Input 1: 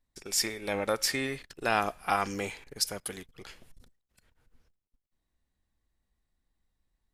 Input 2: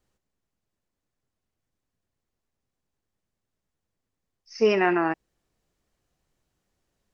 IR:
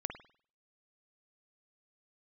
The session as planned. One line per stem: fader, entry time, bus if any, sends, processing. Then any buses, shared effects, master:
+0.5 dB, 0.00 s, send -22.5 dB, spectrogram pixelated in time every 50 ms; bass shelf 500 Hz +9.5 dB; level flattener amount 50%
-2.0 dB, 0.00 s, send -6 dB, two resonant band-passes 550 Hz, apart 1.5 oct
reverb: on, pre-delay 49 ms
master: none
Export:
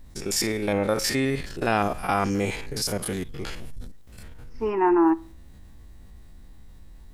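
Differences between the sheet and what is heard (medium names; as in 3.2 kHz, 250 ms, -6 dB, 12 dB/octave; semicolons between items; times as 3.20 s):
stem 2 -2.0 dB -> +8.0 dB; reverb return -8.5 dB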